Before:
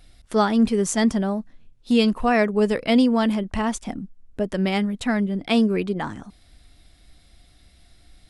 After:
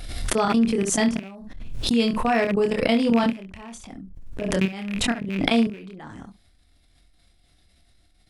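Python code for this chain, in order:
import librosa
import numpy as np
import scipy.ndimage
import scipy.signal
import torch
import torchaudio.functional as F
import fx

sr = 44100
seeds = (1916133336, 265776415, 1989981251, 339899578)

y = fx.rattle_buzz(x, sr, strikes_db=-26.0, level_db=-16.0)
y = fx.level_steps(y, sr, step_db=20)
y = fx.room_early_taps(y, sr, ms=(26, 69), db=(-4.5, -14.5))
y = fx.pre_swell(y, sr, db_per_s=41.0)
y = F.gain(torch.from_numpy(y), -1.0).numpy()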